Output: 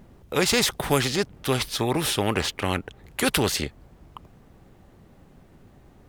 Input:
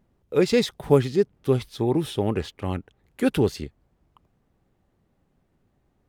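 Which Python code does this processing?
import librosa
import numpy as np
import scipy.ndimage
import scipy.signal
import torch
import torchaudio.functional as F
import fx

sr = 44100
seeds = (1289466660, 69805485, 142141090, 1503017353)

y = fx.spectral_comp(x, sr, ratio=2.0)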